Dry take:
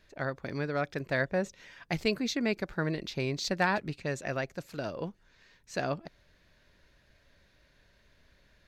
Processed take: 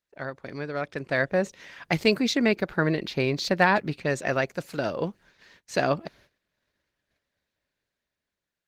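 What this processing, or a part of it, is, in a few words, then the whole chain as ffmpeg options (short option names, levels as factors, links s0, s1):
video call: -filter_complex "[0:a]asettb=1/sr,asplit=3[s0][s1][s2];[s0]atrim=end=2.484[s3];[s1]atrim=start=2.48:end=4.1,asetpts=PTS-STARTPTS,afade=t=in:d=0.004:c=qsin,afade=t=out:st=1.616:d=0.004:c=qsin,equalizer=f=7400:t=o:w=1.2:g=-6[s4];[s2]atrim=start=4.096[s5];[s3][s4]acrossfade=d=0.004:c1=hsin:c2=qsin[s6];[s6][s5]acrossfade=d=0.004:c1=qsin:c2=hsin,highpass=f=140:p=1,dynaudnorm=f=270:g=9:m=2.82,agate=range=0.0708:threshold=0.002:ratio=16:detection=peak" -ar 48000 -c:a libopus -b:a 20k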